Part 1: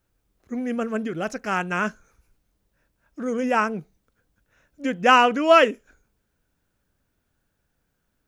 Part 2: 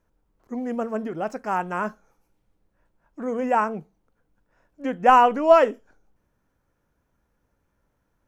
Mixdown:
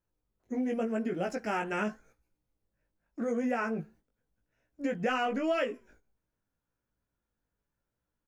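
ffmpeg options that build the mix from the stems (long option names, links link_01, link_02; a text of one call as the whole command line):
ffmpeg -i stem1.wav -i stem2.wav -filter_complex "[0:a]flanger=delay=0.7:depth=6.7:regen=-90:speed=0.41:shape=sinusoidal,volume=0.5dB[link_01];[1:a]alimiter=limit=-11.5dB:level=0:latency=1,adelay=0.4,volume=-3dB[link_02];[link_01][link_02]amix=inputs=2:normalize=0,agate=range=-10dB:threshold=-54dB:ratio=16:detection=peak,flanger=delay=16.5:depth=2.8:speed=0.86,acompressor=threshold=-28dB:ratio=4" out.wav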